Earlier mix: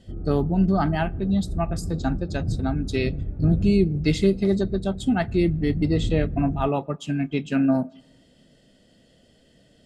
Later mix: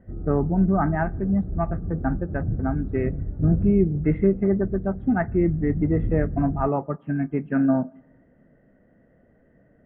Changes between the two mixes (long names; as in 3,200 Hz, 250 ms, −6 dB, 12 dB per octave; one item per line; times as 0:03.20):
speech: add high-shelf EQ 3,500 Hz +8 dB
master: add Butterworth low-pass 1,900 Hz 48 dB per octave